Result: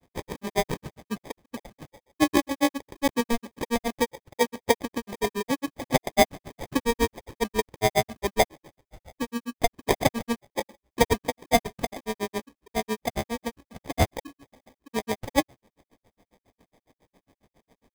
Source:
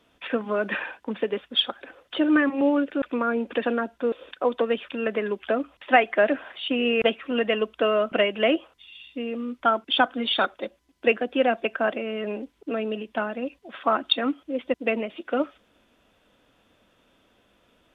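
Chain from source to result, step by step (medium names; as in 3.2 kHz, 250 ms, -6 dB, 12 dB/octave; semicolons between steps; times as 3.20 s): granulator 91 ms, grains 7.3 per s, pitch spread up and down by 0 st; sample-rate reducer 1.4 kHz, jitter 0%; trim +4 dB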